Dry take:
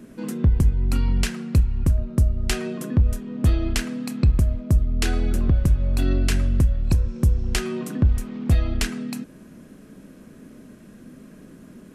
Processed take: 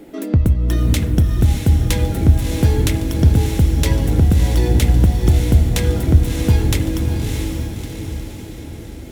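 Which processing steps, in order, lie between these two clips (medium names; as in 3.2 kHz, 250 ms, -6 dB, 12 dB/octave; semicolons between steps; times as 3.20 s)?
wide varispeed 1.31×; echo that smears into a reverb 638 ms, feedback 54%, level -4 dB; trim +3.5 dB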